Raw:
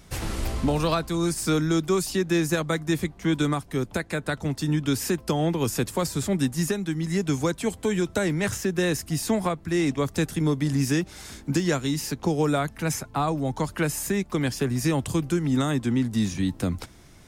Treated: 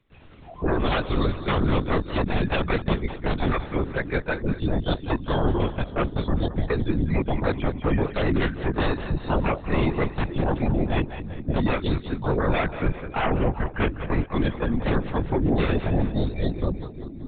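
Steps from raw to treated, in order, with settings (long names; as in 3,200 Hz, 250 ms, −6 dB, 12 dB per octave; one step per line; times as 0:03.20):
wave folding −21 dBFS
noise reduction from a noise print of the clip's start 24 dB
on a send: echo with a time of its own for lows and highs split 350 Hz, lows 573 ms, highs 195 ms, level −11 dB
on the sum: linear-prediction vocoder at 8 kHz whisper
level +5 dB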